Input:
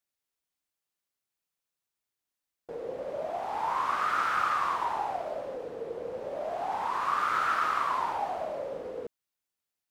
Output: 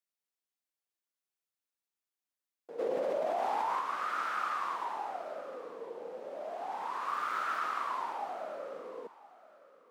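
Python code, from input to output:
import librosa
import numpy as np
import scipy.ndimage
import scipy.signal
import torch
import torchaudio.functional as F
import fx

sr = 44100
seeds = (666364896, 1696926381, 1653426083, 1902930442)

p1 = scipy.signal.sosfilt(scipy.signal.butter(4, 200.0, 'highpass', fs=sr, output='sos'), x)
p2 = fx.dmg_crackle(p1, sr, seeds[0], per_s=470.0, level_db=-43.0, at=(7.08, 7.59), fade=0.02)
p3 = p2 + fx.echo_feedback(p2, sr, ms=1018, feedback_pct=20, wet_db=-18.5, dry=0)
p4 = fx.env_flatten(p3, sr, amount_pct=100, at=(2.78, 3.79), fade=0.02)
y = p4 * 10.0 ** (-6.5 / 20.0)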